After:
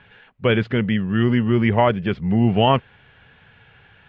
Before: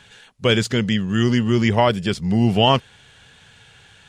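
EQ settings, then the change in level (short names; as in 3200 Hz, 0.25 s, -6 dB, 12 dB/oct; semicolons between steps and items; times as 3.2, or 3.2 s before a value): LPF 2600 Hz 24 dB/oct; 0.0 dB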